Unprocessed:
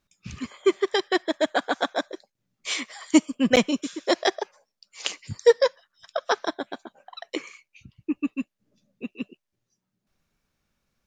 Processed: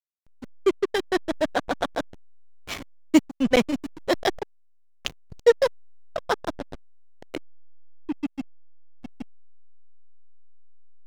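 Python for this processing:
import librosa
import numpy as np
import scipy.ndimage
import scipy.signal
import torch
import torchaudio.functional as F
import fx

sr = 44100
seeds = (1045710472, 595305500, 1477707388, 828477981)

y = fx.backlash(x, sr, play_db=-20.0)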